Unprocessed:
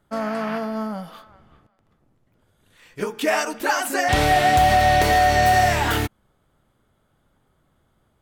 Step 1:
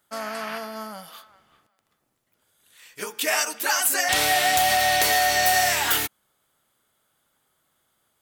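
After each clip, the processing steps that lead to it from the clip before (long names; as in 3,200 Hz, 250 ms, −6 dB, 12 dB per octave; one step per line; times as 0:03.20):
spectral tilt +4 dB per octave
level −4 dB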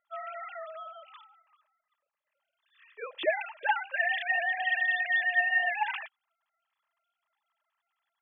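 three sine waves on the formant tracks
notch comb filter 730 Hz
level +1 dB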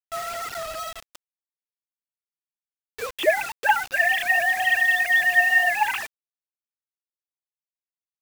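bit reduction 7 bits
level +8 dB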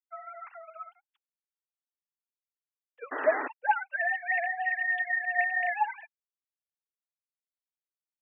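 three sine waves on the formant tracks
sound drawn into the spectrogram noise, 0:03.11–0:03.48, 250–2,000 Hz −25 dBFS
level −8.5 dB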